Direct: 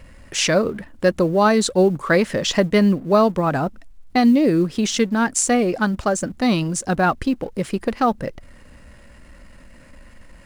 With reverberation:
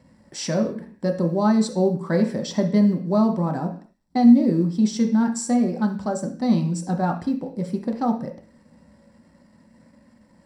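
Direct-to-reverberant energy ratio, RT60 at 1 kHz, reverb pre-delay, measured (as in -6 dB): 2.0 dB, 0.55 s, 3 ms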